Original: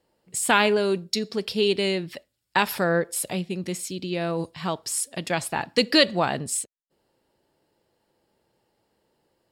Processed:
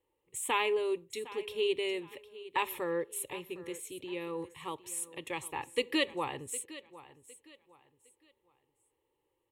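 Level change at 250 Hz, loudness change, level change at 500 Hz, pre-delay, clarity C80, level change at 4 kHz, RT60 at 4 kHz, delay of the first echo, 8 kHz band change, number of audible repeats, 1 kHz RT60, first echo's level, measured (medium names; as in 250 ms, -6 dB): -12.5 dB, -10.5 dB, -9.0 dB, no reverb, no reverb, -12.5 dB, no reverb, 759 ms, -11.0 dB, 2, no reverb, -17.0 dB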